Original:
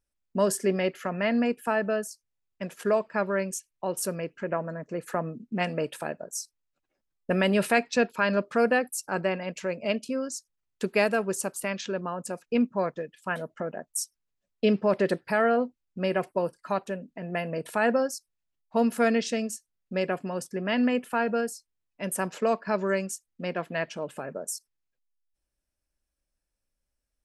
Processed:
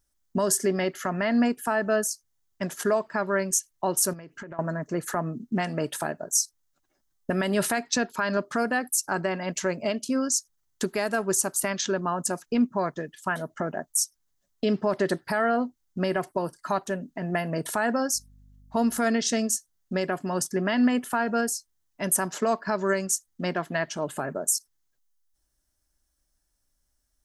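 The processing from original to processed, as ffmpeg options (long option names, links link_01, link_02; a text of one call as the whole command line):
ffmpeg -i in.wav -filter_complex "[0:a]asettb=1/sr,asplit=3[link_01][link_02][link_03];[link_01]atrim=end=4.134[link_04];[link_02]atrim=start=4.13:end=4.59,asetpts=PTS-STARTPTS,afade=type=in:duration=0.004:curve=qsin,afade=type=out:start_time=0.456:duration=0.004:curve=qsin,acompressor=threshold=-41dB:ratio=12:attack=3.2:release=140:knee=1:detection=peak[link_05];[link_03]atrim=start=4.586[link_06];[link_04][link_05]acrossfade=duration=0.004:curve1=hsin:curve2=qsin[link_07];[link_07][link_06]acrossfade=duration=0.004:curve1=qsin:curve2=hsin,asettb=1/sr,asplit=3[link_08][link_09][link_10];[link_08]atrim=end=18.144[link_11];[link_09]atrim=start=18.14:end=18.98,asetpts=PTS-STARTPTS,afade=type=in:duration=0.004:curve=qsin,afade=type=out:start_time=0.836:duration=0.004:curve=qsin,aeval=exprs='val(0)+0.001*(sin(2*PI*50*n/s)+sin(2*PI*2*50*n/s)/2+sin(2*PI*3*50*n/s)/3+sin(2*PI*4*50*n/s)/4+sin(2*PI*5*50*n/s)/5)':channel_layout=same[link_12];[link_10]atrim=start=18.976[link_13];[link_11][link_12]acrossfade=duration=0.004:curve1=hsin:curve2=qsin[link_14];[link_14][link_13]acrossfade=duration=0.004:curve1=qsin:curve2=hsin,asettb=1/sr,asplit=3[link_15][link_16][link_17];[link_15]atrim=end=24.084[link_18];[link_16]atrim=start=24.08:end=24.55,asetpts=PTS-STARTPTS,afade=type=in:duration=0.004:curve=qsin,afade=type=out:start_time=0.466:duration=0.004:curve=qsin,equalizer=frequency=5600:width=5.3:gain=-8[link_19];[link_17]atrim=start=24.546[link_20];[link_18][link_19]acrossfade=duration=0.004:curve1=hsin:curve2=qsin[link_21];[link_21][link_20]acrossfade=duration=0.004:curve1=qsin:curve2=hsin,highshelf=frequency=8600:gain=5.5,alimiter=limit=-19.5dB:level=0:latency=1:release=255,equalizer=frequency=200:width_type=o:width=0.33:gain=-4,equalizer=frequency=500:width_type=o:width=0.33:gain=-10,equalizer=frequency=2500:width_type=o:width=0.33:gain=-10,equalizer=frequency=6300:width_type=o:width=0.33:gain=5,volume=7.5dB" out.wav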